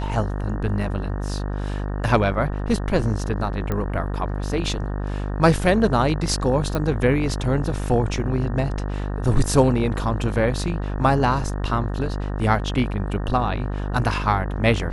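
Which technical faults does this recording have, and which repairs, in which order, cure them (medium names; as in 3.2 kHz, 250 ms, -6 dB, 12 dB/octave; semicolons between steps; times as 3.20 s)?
buzz 50 Hz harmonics 37 -26 dBFS
3.72 s: pop -13 dBFS
6.75 s: pop -12 dBFS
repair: de-click; de-hum 50 Hz, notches 37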